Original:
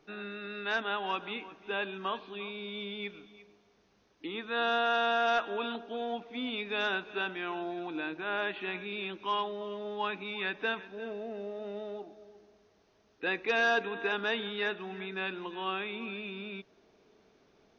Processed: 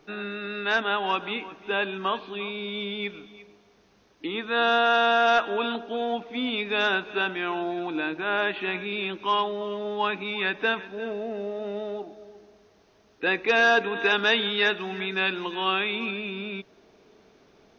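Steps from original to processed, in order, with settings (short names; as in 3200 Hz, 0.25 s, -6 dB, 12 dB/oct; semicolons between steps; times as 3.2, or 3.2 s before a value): 13.95–16.11 high shelf 2800 Hz +8.5 dB; gain +7.5 dB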